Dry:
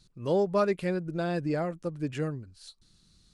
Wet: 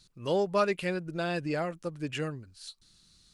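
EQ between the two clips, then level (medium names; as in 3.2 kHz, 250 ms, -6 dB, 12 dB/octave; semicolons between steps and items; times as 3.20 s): tilt shelf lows -4 dB, about 800 Hz; dynamic bell 2.8 kHz, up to +6 dB, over -57 dBFS, Q 4.5; 0.0 dB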